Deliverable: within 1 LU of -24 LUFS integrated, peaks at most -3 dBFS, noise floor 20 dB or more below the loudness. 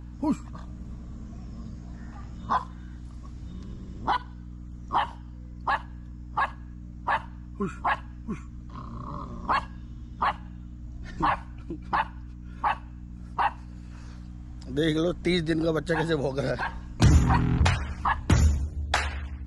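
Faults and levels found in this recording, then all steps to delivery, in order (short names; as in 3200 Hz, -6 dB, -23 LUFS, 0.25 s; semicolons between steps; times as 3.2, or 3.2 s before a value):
hum 60 Hz; harmonics up to 300 Hz; hum level -39 dBFS; loudness -28.0 LUFS; peak -8.5 dBFS; loudness target -24.0 LUFS
-> de-hum 60 Hz, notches 5; gain +4 dB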